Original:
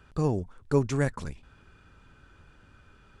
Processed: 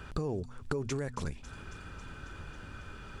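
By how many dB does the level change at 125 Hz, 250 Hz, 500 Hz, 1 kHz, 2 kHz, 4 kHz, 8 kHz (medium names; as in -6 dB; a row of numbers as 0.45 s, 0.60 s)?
-8.0 dB, -8.0 dB, -7.5 dB, -5.0 dB, -3.0 dB, +1.0 dB, -2.0 dB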